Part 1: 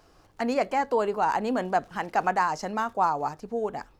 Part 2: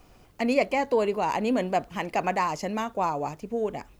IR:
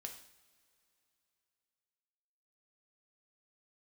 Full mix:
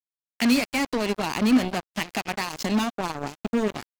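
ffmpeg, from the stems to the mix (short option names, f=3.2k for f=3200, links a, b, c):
-filter_complex "[0:a]highpass=f=590:w=0.5412,highpass=f=590:w=1.3066,acompressor=threshold=-36dB:ratio=3,volume=2dB,asplit=2[a][b];[b]volume=-6dB[c];[1:a]alimiter=limit=-18.5dB:level=0:latency=1:release=419,equalizer=f=79:w=1:g=-7,acontrast=31,adelay=13,volume=1.5dB[d];[2:a]atrim=start_sample=2205[e];[c][e]afir=irnorm=-1:irlink=0[f];[a][d][f]amix=inputs=3:normalize=0,equalizer=f=250:t=o:w=1:g=7,equalizer=f=500:t=o:w=1:g=-10,equalizer=f=1k:t=o:w=1:g=-8,equalizer=f=4k:t=o:w=1:g=10,acrusher=bits=3:mix=0:aa=0.5,adynamicequalizer=threshold=0.01:dfrequency=1700:dqfactor=0.7:tfrequency=1700:tqfactor=0.7:attack=5:release=100:ratio=0.375:range=2:mode=cutabove:tftype=highshelf"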